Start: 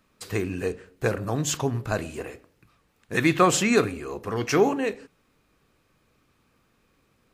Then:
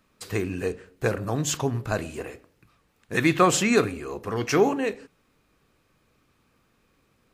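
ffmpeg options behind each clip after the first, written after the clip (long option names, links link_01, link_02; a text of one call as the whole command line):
ffmpeg -i in.wav -af anull out.wav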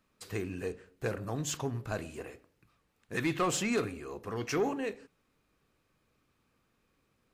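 ffmpeg -i in.wav -af "asoftclip=type=tanh:threshold=-14dB,volume=-8dB" out.wav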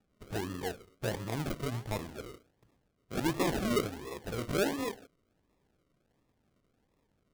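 ffmpeg -i in.wav -af "acrusher=samples=41:mix=1:aa=0.000001:lfo=1:lforange=24.6:lforate=1.4" out.wav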